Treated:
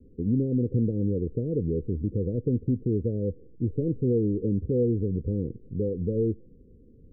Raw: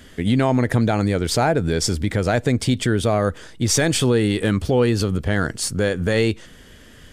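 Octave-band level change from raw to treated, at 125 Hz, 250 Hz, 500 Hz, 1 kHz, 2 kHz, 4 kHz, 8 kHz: -6.0 dB, -6.0 dB, -8.0 dB, under -40 dB, under -40 dB, under -40 dB, under -40 dB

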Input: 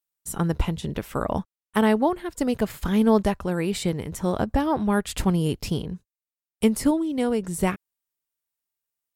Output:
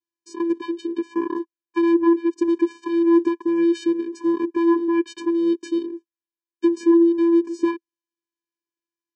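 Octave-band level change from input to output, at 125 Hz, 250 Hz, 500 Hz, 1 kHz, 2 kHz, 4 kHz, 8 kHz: under -25 dB, +5.5 dB, +3.5 dB, -3.0 dB, -3.0 dB, no reading, under -10 dB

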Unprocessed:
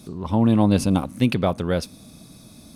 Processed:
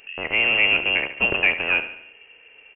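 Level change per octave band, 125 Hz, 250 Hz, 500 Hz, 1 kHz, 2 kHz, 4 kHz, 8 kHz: -20.0 dB, -18.0 dB, -5.5 dB, -4.0 dB, +19.0 dB, +11.5 dB, under -40 dB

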